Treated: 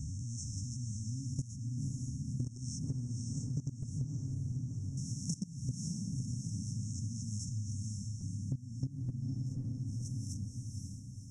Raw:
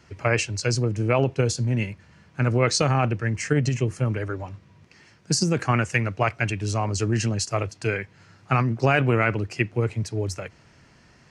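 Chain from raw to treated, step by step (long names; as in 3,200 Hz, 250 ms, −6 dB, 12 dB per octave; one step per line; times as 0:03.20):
peak hold with a rise ahead of every peak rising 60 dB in 1.01 s
low-shelf EQ 100 Hz +5 dB
brick-wall band-stop 290–5,300 Hz
output level in coarse steps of 19 dB
on a send: feedback delay with all-pass diffusion 526 ms, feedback 46%, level −3.5 dB
on the sum: downward compressor 10 to 1, threshold −32 dBFS, peak gain reduction 15 dB
high-shelf EQ 8,300 Hz −5.5 dB
level −1.5 dB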